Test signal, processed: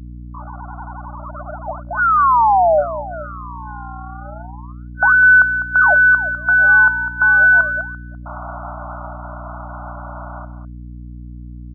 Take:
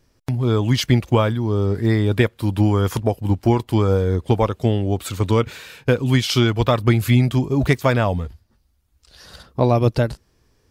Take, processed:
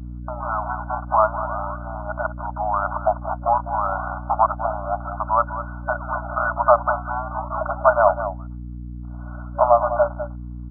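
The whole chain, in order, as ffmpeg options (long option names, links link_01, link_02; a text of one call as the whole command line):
ffmpeg -i in.wav -filter_complex "[0:a]aecho=1:1:202:0.266,asplit=2[link_01][link_02];[link_02]acrusher=samples=40:mix=1:aa=0.000001:lfo=1:lforange=64:lforate=0.32,volume=-7.5dB[link_03];[link_01][link_03]amix=inputs=2:normalize=0,afftfilt=real='re*between(b*sr/4096,580,1500)':imag='im*between(b*sr/4096,580,1500)':win_size=4096:overlap=0.75,aeval=exprs='val(0)+0.0126*(sin(2*PI*60*n/s)+sin(2*PI*2*60*n/s)/2+sin(2*PI*3*60*n/s)/3+sin(2*PI*4*60*n/s)/4+sin(2*PI*5*60*n/s)/5)':channel_layout=same,volume=6.5dB" out.wav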